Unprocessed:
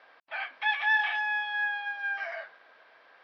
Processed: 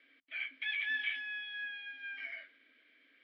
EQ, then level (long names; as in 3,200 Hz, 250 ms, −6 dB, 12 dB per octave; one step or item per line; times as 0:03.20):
formant filter i
mains-hum notches 60/120/180 Hz
+7.5 dB